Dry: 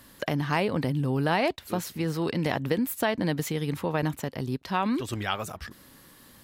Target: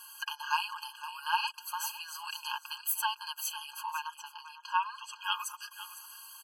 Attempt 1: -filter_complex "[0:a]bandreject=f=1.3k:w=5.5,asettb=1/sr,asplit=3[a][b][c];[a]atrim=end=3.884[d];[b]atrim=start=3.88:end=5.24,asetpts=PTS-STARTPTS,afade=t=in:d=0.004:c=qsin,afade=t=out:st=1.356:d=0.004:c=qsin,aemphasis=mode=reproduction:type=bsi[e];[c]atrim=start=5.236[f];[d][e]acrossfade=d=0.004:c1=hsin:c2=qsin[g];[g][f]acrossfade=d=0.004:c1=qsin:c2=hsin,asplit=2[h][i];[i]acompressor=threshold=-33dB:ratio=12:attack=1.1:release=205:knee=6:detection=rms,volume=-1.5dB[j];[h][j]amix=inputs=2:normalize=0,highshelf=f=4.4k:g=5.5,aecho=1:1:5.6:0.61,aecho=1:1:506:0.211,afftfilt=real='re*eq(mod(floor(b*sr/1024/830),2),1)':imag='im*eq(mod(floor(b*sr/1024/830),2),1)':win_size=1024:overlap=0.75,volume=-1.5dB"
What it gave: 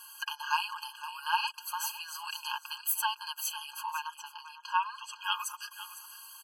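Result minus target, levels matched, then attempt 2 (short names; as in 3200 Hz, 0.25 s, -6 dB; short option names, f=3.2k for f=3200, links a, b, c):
compressor: peak gain reduction -8 dB
-filter_complex "[0:a]bandreject=f=1.3k:w=5.5,asettb=1/sr,asplit=3[a][b][c];[a]atrim=end=3.884[d];[b]atrim=start=3.88:end=5.24,asetpts=PTS-STARTPTS,afade=t=in:d=0.004:c=qsin,afade=t=out:st=1.356:d=0.004:c=qsin,aemphasis=mode=reproduction:type=bsi[e];[c]atrim=start=5.236[f];[d][e]acrossfade=d=0.004:c1=hsin:c2=qsin[g];[g][f]acrossfade=d=0.004:c1=qsin:c2=hsin,asplit=2[h][i];[i]acompressor=threshold=-41.5dB:ratio=12:attack=1.1:release=205:knee=6:detection=rms,volume=-1.5dB[j];[h][j]amix=inputs=2:normalize=0,highshelf=f=4.4k:g=5.5,aecho=1:1:5.6:0.61,aecho=1:1:506:0.211,afftfilt=real='re*eq(mod(floor(b*sr/1024/830),2),1)':imag='im*eq(mod(floor(b*sr/1024/830),2),1)':win_size=1024:overlap=0.75,volume=-1.5dB"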